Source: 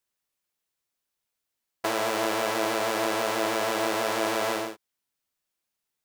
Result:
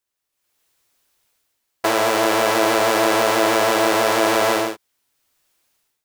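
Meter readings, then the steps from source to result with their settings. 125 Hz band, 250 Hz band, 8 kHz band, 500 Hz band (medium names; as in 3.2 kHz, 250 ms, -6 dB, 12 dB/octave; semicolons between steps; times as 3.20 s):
+9.0 dB, +9.5 dB, +9.0 dB, +9.5 dB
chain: peaking EQ 190 Hz -10.5 dB 0.25 oct; level rider gain up to 16.5 dB; in parallel at -8 dB: overload inside the chain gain 14 dB; on the sum: trim -2.5 dB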